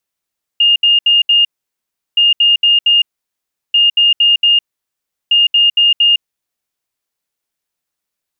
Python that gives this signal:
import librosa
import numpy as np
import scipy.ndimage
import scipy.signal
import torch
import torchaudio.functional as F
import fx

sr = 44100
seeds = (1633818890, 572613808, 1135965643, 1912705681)

y = fx.beep_pattern(sr, wave='sine', hz=2830.0, on_s=0.16, off_s=0.07, beeps=4, pause_s=0.72, groups=4, level_db=-6.5)